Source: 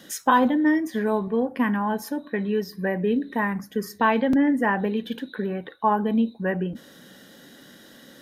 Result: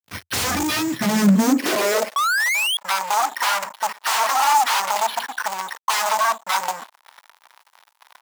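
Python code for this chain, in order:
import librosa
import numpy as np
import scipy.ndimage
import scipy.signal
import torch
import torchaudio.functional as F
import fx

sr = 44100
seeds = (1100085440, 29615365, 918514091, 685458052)

y = fx.air_absorb(x, sr, metres=130.0)
y = fx.dispersion(y, sr, late='lows', ms=68.0, hz=2200.0)
y = np.repeat(y[::6], 6)[:len(y)]
y = fx.band_shelf(y, sr, hz=510.0, db=-10.0, octaves=1.7)
y = fx.echo_feedback(y, sr, ms=63, feedback_pct=20, wet_db=-20.0)
y = (np.mod(10.0 ** (23.5 / 20.0) * y + 1.0, 2.0) - 1.0) / 10.0 ** (23.5 / 20.0)
y = fx.spec_paint(y, sr, seeds[0], shape='rise', start_s=2.16, length_s=0.61, low_hz=1100.0, high_hz=3400.0, level_db=-15.0)
y = fx.fuzz(y, sr, gain_db=37.0, gate_db=-45.0)
y = fx.filter_sweep_highpass(y, sr, from_hz=85.0, to_hz=920.0, start_s=0.63, end_s=2.46, q=4.3)
y = y * 10.0 ** (-8.0 / 20.0)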